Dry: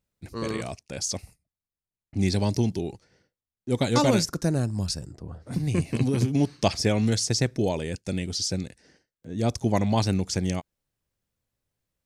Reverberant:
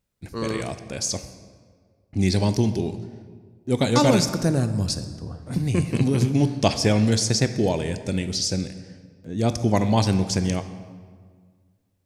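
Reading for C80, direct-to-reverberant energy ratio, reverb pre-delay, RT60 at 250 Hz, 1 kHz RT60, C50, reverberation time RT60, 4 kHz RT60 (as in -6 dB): 12.5 dB, 10.0 dB, 15 ms, 1.9 s, 1.7 s, 11.5 dB, 1.8 s, 1.1 s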